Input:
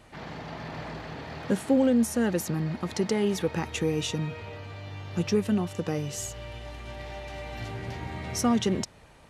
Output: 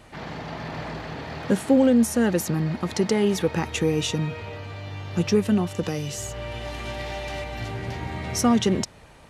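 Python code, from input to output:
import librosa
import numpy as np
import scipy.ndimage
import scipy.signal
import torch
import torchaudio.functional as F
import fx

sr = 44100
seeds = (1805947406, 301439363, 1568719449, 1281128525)

y = fx.band_squash(x, sr, depth_pct=70, at=(5.83, 7.44))
y = F.gain(torch.from_numpy(y), 4.5).numpy()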